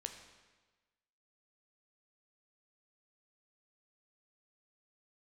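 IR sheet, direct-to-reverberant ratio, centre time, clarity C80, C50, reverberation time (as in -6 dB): 5.0 dB, 25 ms, 9.0 dB, 7.5 dB, 1.3 s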